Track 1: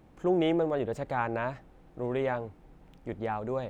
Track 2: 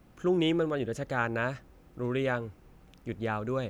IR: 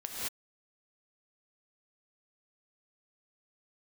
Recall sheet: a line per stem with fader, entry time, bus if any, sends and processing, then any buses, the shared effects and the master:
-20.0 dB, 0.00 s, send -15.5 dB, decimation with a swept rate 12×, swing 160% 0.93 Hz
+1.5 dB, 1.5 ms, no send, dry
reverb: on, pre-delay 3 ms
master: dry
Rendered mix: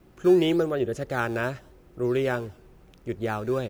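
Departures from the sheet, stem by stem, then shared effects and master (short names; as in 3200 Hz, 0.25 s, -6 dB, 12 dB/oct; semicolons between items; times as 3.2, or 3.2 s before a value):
stem 1 -20.0 dB -> -12.5 dB; master: extra bell 370 Hz +10 dB 0.29 oct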